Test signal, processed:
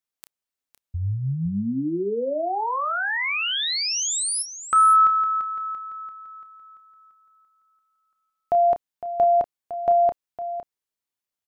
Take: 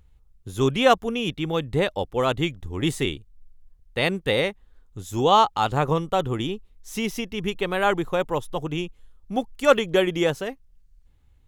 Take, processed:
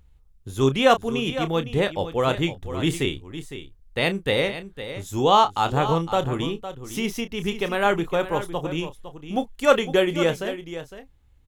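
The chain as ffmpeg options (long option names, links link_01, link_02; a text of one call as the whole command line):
ffmpeg -i in.wav -filter_complex "[0:a]asplit=2[link_01][link_02];[link_02]adelay=30,volume=-11dB[link_03];[link_01][link_03]amix=inputs=2:normalize=0,asplit=2[link_04][link_05];[link_05]aecho=0:1:508:0.251[link_06];[link_04][link_06]amix=inputs=2:normalize=0" out.wav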